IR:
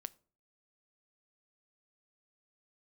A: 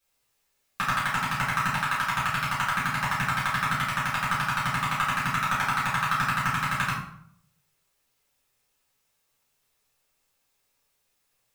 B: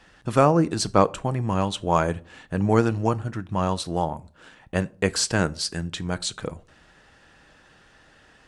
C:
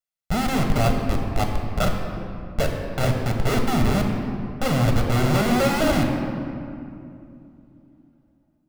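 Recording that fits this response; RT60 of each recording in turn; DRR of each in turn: B; 0.65, 0.45, 2.6 s; -10.5, 14.0, 2.5 dB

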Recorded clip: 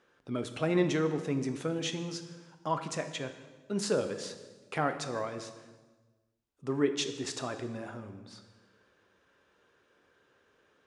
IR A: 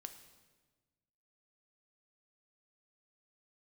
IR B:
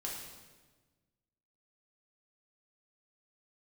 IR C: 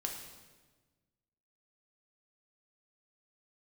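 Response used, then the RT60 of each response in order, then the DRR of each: A; 1.3, 1.3, 1.3 s; 7.5, -3.5, 1.0 dB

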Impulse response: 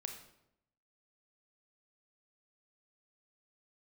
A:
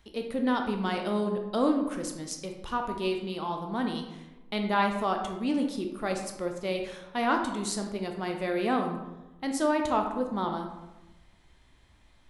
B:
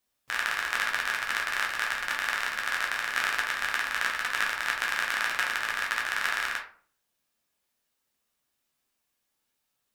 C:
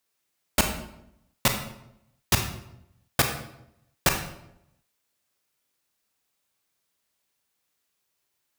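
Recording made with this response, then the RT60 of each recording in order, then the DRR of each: C; 1.1, 0.45, 0.80 s; 3.0, -2.0, 4.5 dB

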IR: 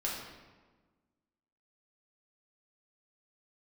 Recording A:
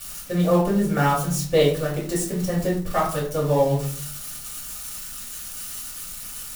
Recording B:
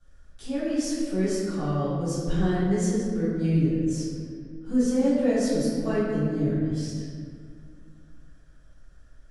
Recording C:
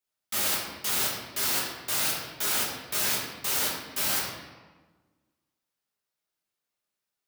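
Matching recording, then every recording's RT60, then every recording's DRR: C; 0.50, 2.0, 1.4 s; -7.0, -15.5, -5.0 dB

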